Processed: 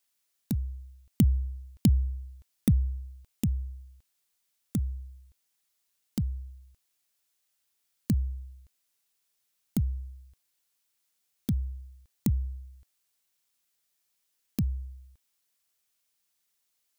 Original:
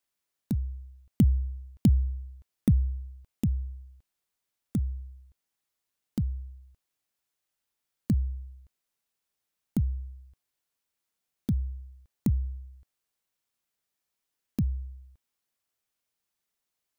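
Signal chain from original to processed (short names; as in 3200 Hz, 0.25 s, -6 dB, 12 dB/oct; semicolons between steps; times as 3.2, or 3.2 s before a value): high shelf 2100 Hz +9.5 dB; gain -1 dB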